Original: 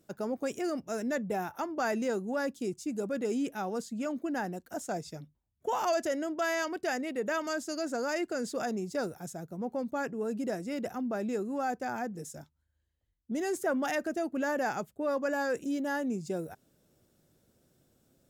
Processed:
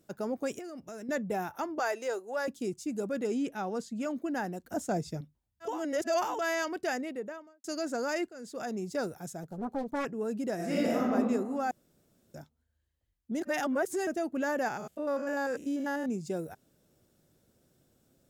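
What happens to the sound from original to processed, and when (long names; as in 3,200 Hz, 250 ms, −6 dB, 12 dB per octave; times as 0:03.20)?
0:00.59–0:01.09: downward compressor, threshold −40 dBFS
0:01.79–0:02.48: high-pass filter 400 Hz 24 dB per octave
0:03.27–0:03.96: high-shelf EQ 10,000 Hz −11 dB
0:04.64–0:05.21: low-shelf EQ 440 Hz +8.5 dB
0:05.72–0:06.35: reverse, crossfade 0.24 s
0:06.87–0:07.64: fade out and dull
0:08.29–0:08.87: fade in, from −18.5 dB
0:09.43–0:10.05: highs frequency-modulated by the lows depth 0.8 ms
0:10.55–0:11.12: thrown reverb, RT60 1.4 s, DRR −7.5 dB
0:11.71–0:12.34: fill with room tone
0:13.42–0:14.07: reverse
0:14.68–0:16.09: spectrum averaged block by block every 100 ms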